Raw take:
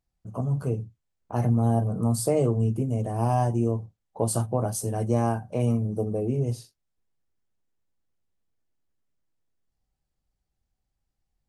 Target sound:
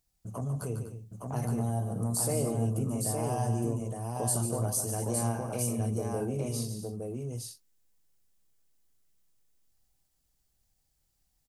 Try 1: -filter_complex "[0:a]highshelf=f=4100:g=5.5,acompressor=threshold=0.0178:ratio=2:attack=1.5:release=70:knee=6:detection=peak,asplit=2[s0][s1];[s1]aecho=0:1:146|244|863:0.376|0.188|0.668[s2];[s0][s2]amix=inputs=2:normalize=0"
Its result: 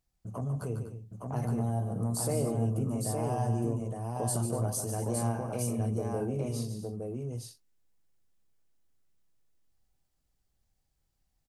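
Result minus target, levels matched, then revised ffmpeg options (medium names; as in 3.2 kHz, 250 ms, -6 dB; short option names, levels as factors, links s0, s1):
8 kHz band -3.5 dB
-filter_complex "[0:a]highshelf=f=4100:g=15,acompressor=threshold=0.0178:ratio=2:attack=1.5:release=70:knee=6:detection=peak,asplit=2[s0][s1];[s1]aecho=0:1:146|244|863:0.376|0.188|0.668[s2];[s0][s2]amix=inputs=2:normalize=0"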